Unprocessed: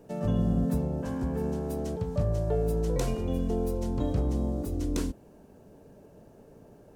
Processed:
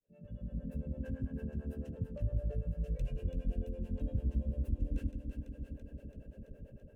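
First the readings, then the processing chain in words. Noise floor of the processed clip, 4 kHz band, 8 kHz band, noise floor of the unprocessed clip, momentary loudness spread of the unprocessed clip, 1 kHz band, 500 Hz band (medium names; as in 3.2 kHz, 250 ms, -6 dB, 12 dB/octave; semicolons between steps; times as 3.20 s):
-58 dBFS, under -15 dB, under -25 dB, -55 dBFS, 5 LU, under -25 dB, -16.5 dB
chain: fade-in on the opening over 0.82 s; time-frequency box 2.60–3.08 s, 200–2100 Hz -6 dB; compression 2:1, threshold -45 dBFS, peak gain reduction 12.5 dB; resonant high shelf 3.5 kHz -9 dB, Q 1.5; small resonant body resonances 550/1600/2700 Hz, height 14 dB, ringing for 30 ms; level rider gain up to 6 dB; multi-head delay 167 ms, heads first and second, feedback 74%, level -11 dB; harmonic tremolo 8.9 Hz, depth 100%, crossover 410 Hz; amplifier tone stack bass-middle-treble 10-0-1; trim +11.5 dB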